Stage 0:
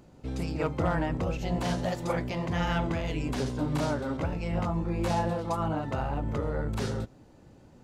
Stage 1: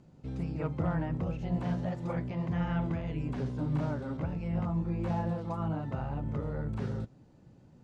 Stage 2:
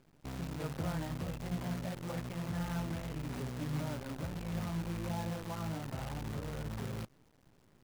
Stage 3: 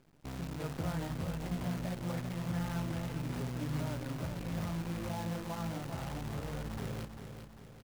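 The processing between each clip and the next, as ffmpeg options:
-filter_complex "[0:a]lowpass=8.5k,acrossover=split=2600[a][b];[b]acompressor=threshold=-55dB:ratio=4:attack=1:release=60[c];[a][c]amix=inputs=2:normalize=0,equalizer=f=150:t=o:w=1.3:g=9,volume=-8dB"
-af "acrusher=bits=7:dc=4:mix=0:aa=0.000001,volume=-6dB"
-af "aecho=1:1:397|794|1191|1588|1985|2382:0.398|0.195|0.0956|0.0468|0.023|0.0112"

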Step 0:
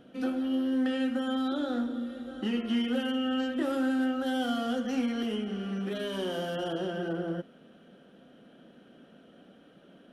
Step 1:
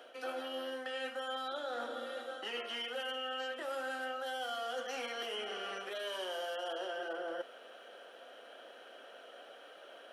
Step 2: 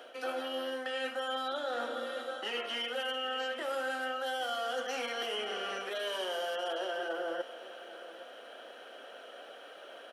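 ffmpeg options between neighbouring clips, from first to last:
-af "highpass=f=530:w=0.5412,highpass=f=530:w=1.3066,areverse,acompressor=threshold=-46dB:ratio=6,areverse,bandreject=f=3.6k:w=24,volume=8.5dB"
-af "aecho=1:1:811:0.168,volume=4dB"

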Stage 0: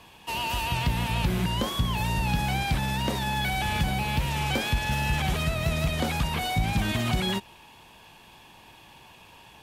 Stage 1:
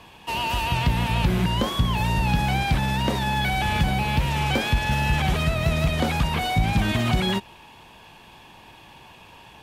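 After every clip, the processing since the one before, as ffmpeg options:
-af "highshelf=f=5k:g=-6.5,volume=4.5dB"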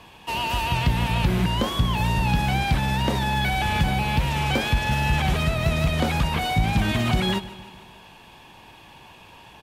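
-af "aecho=1:1:151|302|453|604|755:0.141|0.0805|0.0459|0.0262|0.0149"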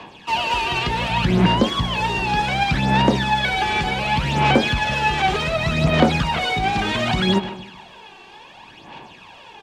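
-filter_complex "[0:a]acrossover=split=160 7600:gain=0.2 1 0.0631[a][b][c];[a][b][c]amix=inputs=3:normalize=0,aphaser=in_gain=1:out_gain=1:delay=2.6:decay=0.58:speed=0.67:type=sinusoidal,volume=3.5dB"

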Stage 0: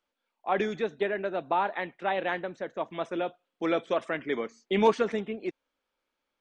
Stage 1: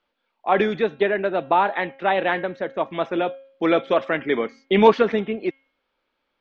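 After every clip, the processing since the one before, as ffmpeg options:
-af "lowpass=f=4.5k:w=0.5412,lowpass=f=4.5k:w=1.3066,bandreject=f=270.6:t=h:w=4,bandreject=f=541.2:t=h:w=4,bandreject=f=811.8:t=h:w=4,bandreject=f=1.0824k:t=h:w=4,bandreject=f=1.353k:t=h:w=4,bandreject=f=1.6236k:t=h:w=4,bandreject=f=1.8942k:t=h:w=4,bandreject=f=2.1648k:t=h:w=4,bandreject=f=2.4354k:t=h:w=4,bandreject=f=2.706k:t=h:w=4,bandreject=f=2.9766k:t=h:w=4,bandreject=f=3.2472k:t=h:w=4,volume=8.5dB"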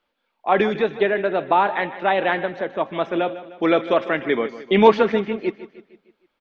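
-af "aecho=1:1:153|306|459|612|765:0.178|0.0889|0.0445|0.0222|0.0111,volume=1dB"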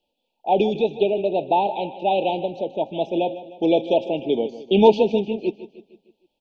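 -af "asuperstop=centerf=1500:order=20:qfactor=0.95"

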